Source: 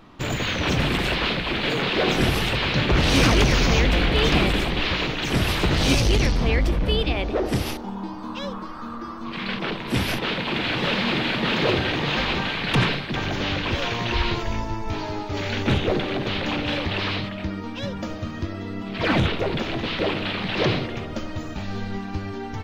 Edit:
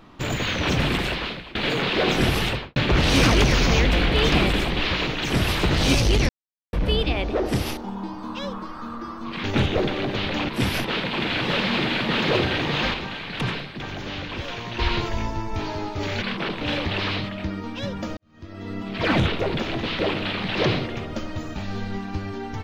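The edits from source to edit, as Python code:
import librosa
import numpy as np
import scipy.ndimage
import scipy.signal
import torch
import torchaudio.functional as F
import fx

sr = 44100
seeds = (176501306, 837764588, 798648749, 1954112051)

y = fx.studio_fade_out(x, sr, start_s=2.46, length_s=0.3)
y = fx.edit(y, sr, fx.fade_out_to(start_s=0.93, length_s=0.62, floor_db=-21.0),
    fx.silence(start_s=6.29, length_s=0.44),
    fx.swap(start_s=9.44, length_s=0.39, other_s=15.56, other_length_s=1.05),
    fx.clip_gain(start_s=12.28, length_s=1.85, db=-6.5),
    fx.fade_in_span(start_s=18.17, length_s=0.54, curve='qua'), tone=tone)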